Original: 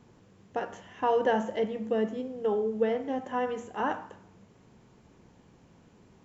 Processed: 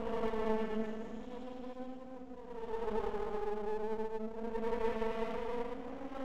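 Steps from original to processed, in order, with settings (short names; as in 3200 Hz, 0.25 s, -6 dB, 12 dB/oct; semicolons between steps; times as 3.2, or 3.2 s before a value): Paulstretch 5.2×, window 0.25 s, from 1.9; half-wave rectifier; gain -5.5 dB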